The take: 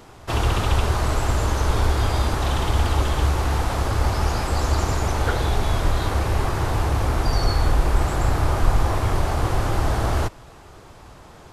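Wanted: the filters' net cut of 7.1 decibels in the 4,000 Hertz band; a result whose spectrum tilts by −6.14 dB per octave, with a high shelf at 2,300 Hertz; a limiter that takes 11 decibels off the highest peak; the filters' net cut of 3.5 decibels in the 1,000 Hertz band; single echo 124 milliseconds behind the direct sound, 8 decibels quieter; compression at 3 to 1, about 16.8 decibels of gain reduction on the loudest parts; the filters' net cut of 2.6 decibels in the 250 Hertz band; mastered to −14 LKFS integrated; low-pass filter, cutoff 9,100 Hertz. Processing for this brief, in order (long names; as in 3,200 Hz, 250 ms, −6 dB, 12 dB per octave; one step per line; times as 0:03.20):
low-pass filter 9,100 Hz
parametric band 250 Hz −3.5 dB
parametric band 1,000 Hz −3.5 dB
high-shelf EQ 2,300 Hz −3 dB
parametric band 4,000 Hz −6 dB
downward compressor 3 to 1, threshold −35 dBFS
brickwall limiter −33 dBFS
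single-tap delay 124 ms −8 dB
level +28.5 dB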